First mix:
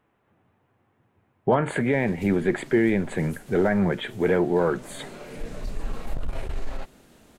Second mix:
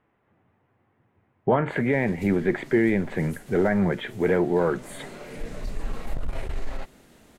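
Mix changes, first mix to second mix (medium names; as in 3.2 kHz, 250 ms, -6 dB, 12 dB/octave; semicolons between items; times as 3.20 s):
speech: add distance through air 170 m; master: add peaking EQ 2 kHz +4 dB 0.24 oct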